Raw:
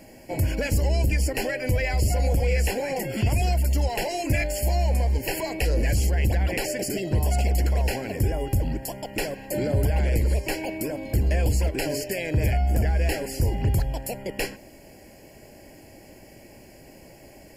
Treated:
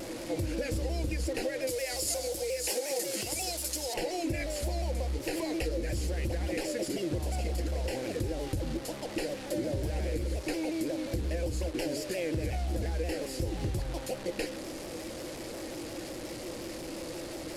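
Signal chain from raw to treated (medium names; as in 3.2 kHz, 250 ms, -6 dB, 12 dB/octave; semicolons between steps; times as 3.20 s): one-bit delta coder 64 kbps, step -30 dBFS; peaking EQ 4.4 kHz +4 dB 0.7 oct; small resonant body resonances 330/500 Hz, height 13 dB, ringing for 75 ms; compression, threshold -21 dBFS, peak gain reduction 9 dB; 1.67–3.94 s: tone controls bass -14 dB, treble +14 dB; vibrato with a chosen wave saw down 5.6 Hz, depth 100 cents; trim -7.5 dB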